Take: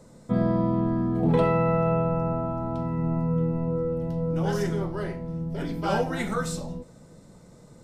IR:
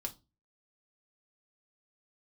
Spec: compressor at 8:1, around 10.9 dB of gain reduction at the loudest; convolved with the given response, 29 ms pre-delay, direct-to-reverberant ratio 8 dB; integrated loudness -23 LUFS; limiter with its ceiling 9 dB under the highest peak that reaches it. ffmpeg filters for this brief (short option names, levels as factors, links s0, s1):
-filter_complex "[0:a]acompressor=threshold=0.0355:ratio=8,alimiter=level_in=1.78:limit=0.0631:level=0:latency=1,volume=0.562,asplit=2[s0][s1];[1:a]atrim=start_sample=2205,adelay=29[s2];[s1][s2]afir=irnorm=-1:irlink=0,volume=0.447[s3];[s0][s3]amix=inputs=2:normalize=0,volume=5.62"